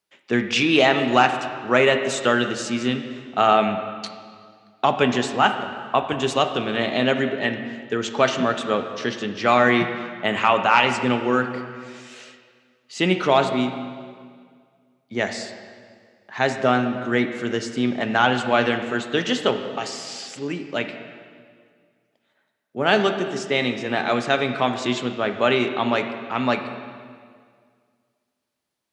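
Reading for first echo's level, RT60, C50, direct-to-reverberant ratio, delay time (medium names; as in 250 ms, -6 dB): no echo, 2.0 s, 8.0 dB, 6.5 dB, no echo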